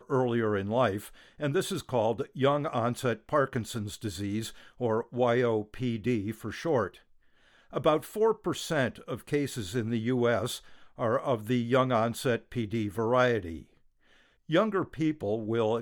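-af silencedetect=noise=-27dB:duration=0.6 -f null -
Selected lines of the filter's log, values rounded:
silence_start: 6.86
silence_end: 7.76 | silence_duration: 0.90
silence_start: 13.38
silence_end: 14.52 | silence_duration: 1.13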